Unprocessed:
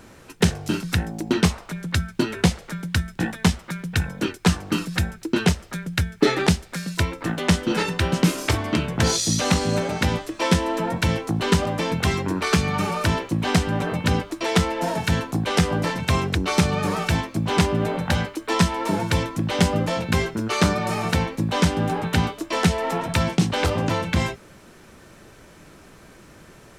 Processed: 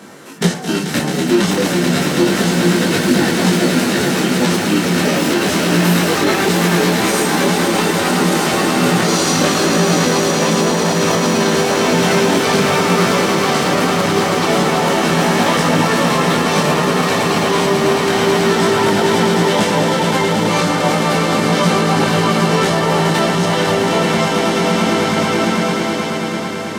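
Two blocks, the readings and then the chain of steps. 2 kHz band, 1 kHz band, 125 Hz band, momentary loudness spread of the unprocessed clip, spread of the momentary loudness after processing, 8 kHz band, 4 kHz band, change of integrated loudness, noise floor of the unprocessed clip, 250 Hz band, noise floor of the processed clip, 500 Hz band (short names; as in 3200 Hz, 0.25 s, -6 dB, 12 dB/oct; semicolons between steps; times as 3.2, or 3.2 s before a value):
+9.5 dB, +10.5 dB, +4.0 dB, 5 LU, 2 LU, +10.0 dB, +9.5 dB, +8.5 dB, -48 dBFS, +9.0 dB, -20 dBFS, +11.5 dB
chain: stepped spectrum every 50 ms; HPF 160 Hz 24 dB/oct; notch 2500 Hz, Q 12; in parallel at -6.5 dB: soft clip -24.5 dBFS, distortion -9 dB; on the sum: echoes that change speed 0.651 s, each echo +6 st, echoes 3, each echo -6 dB; on a send: swelling echo 0.109 s, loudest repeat 8, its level -9 dB; on the sum: maximiser +12.5 dB; detuned doubles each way 11 cents; gain -1 dB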